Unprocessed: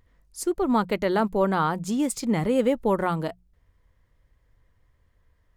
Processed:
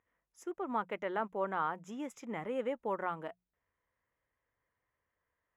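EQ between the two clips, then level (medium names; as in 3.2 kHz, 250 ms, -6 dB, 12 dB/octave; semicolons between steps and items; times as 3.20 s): boxcar filter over 10 samples; high-pass 1 kHz 6 dB/octave; -5.5 dB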